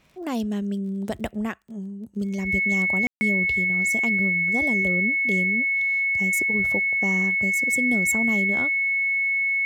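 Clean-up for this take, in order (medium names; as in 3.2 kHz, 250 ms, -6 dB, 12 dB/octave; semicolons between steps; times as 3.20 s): de-click; band-stop 2.2 kHz, Q 30; room tone fill 3.07–3.21 s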